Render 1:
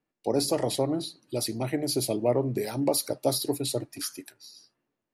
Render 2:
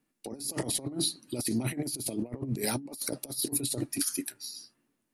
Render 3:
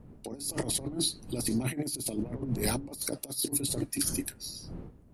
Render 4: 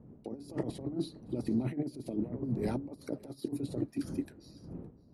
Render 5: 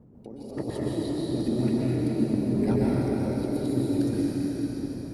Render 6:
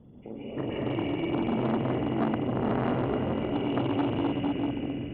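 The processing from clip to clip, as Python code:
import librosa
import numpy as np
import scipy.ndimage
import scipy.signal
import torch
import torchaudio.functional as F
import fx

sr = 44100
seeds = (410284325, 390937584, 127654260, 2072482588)

y1 = fx.graphic_eq_15(x, sr, hz=(100, 250, 10000), db=(-4, 6, 9))
y1 = fx.over_compress(y1, sr, threshold_db=-30.0, ratio=-0.5)
y1 = fx.peak_eq(y1, sr, hz=590.0, db=-6.0, octaves=1.8)
y2 = fx.dmg_wind(y1, sr, seeds[0], corner_hz=200.0, level_db=-44.0)
y3 = fx.bandpass_q(y2, sr, hz=270.0, q=0.52)
y3 = y3 + 10.0 ** (-24.0 / 20.0) * np.pad(y3, (int(564 * sr / 1000.0), 0))[:len(y3)]
y4 = fx.level_steps(y3, sr, step_db=12)
y4 = fx.rev_plate(y4, sr, seeds[1], rt60_s=4.6, hf_ratio=1.0, predelay_ms=110, drr_db=-7.0)
y4 = y4 * 10.0 ** (6.5 / 20.0)
y5 = fx.freq_compress(y4, sr, knee_hz=1900.0, ratio=4.0)
y5 = fx.doubler(y5, sr, ms=45.0, db=-4)
y5 = fx.transformer_sat(y5, sr, knee_hz=890.0)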